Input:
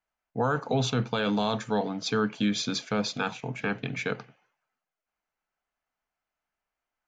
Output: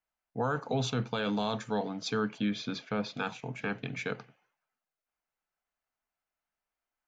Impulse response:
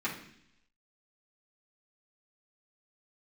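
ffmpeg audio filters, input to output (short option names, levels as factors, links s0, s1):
-filter_complex "[0:a]asettb=1/sr,asplit=3[s0][s1][s2];[s0]atrim=end=2.384[s3];[s1]atrim=start=2.38:end=3.17,asetpts=PTS-STARTPTS,afade=t=in:d=0.004:c=qsin,afade=t=out:st=0.786:d=0.004:c=qsin,lowpass=3400[s4];[s2]atrim=start=3.166[s5];[s3][s4]acrossfade=d=0.004:c1=hsin:c2=qsin[s6];[s6][s5]acrossfade=d=0.004:c1=qsin:c2=hsin,volume=0.596"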